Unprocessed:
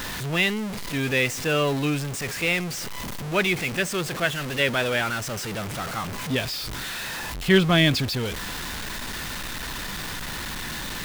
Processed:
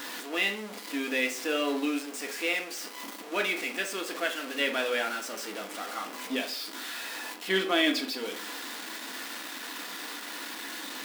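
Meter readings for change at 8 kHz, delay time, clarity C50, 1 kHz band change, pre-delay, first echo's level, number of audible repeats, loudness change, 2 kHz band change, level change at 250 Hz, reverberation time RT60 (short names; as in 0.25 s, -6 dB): -6.0 dB, none, 10.5 dB, -5.0 dB, 3 ms, none, none, -6.0 dB, -5.5 dB, -7.0 dB, 0.45 s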